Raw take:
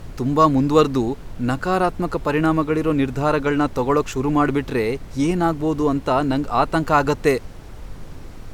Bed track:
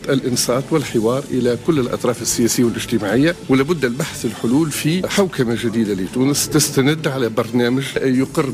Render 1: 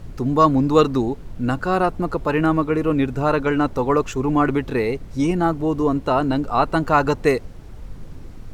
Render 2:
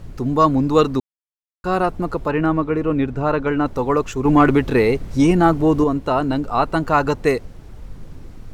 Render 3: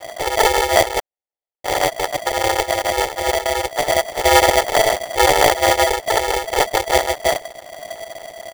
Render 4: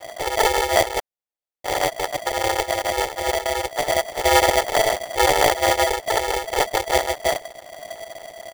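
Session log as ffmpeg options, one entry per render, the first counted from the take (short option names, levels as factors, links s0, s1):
-af "afftdn=nr=6:nf=-37"
-filter_complex "[0:a]asettb=1/sr,asplit=3[s0][s1][s2];[s0]atrim=end=2.284[s3];[s1]atrim=start=2.28:end=3.66,asetpts=PTS-STARTPTS,afade=t=in:d=0.004:c=qsin,afade=t=out:st=1.376:d=0.004:c=qsin,lowpass=f=2800:p=1[s4];[s2]atrim=start=3.656[s5];[s3][s4]acrossfade=d=0.004:c1=hsin:c2=qsin[s6];[s6][s5]acrossfade=d=0.004:c1=qsin:c2=hsin,asettb=1/sr,asplit=3[s7][s8][s9];[s7]atrim=end=4.254[s10];[s8]atrim=start=4.25:end=5.84,asetpts=PTS-STARTPTS,afade=t=in:d=0.004:c=qsin,afade=t=out:st=1.586:d=0.004:c=qsin,acontrast=46[s11];[s9]atrim=start=5.836[s12];[s10][s11]acrossfade=d=0.004:c1=hsin:c2=qsin[s13];[s13][s12]acrossfade=d=0.004:c1=qsin:c2=hsin,asplit=3[s14][s15][s16];[s14]atrim=end=1,asetpts=PTS-STARTPTS,afade=t=out:st=0.996:d=0.004:c=hsin[s17];[s15]atrim=start=1:end=1.64,asetpts=PTS-STARTPTS,volume=0[s18];[s16]atrim=start=1.64,asetpts=PTS-STARTPTS,afade=t=in:d=0.004:c=hsin[s19];[s17][s18][s19]concat=n=3:v=0:a=1"
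-af "aresample=16000,acrusher=samples=36:mix=1:aa=0.000001,aresample=44100,aeval=exprs='val(0)*sgn(sin(2*PI*660*n/s))':c=same"
-af "volume=0.668"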